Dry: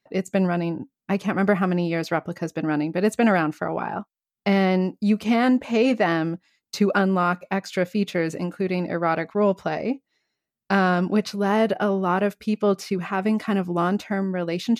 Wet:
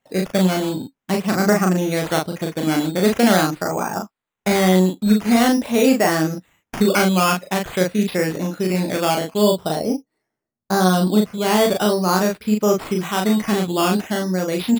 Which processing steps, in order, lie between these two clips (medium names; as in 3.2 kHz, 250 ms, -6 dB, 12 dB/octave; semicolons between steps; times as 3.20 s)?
9.05–11.38 s: low-pass 1.2 kHz 12 dB/octave; decimation with a swept rate 9×, swing 60% 0.46 Hz; doubling 38 ms -3 dB; trim +2.5 dB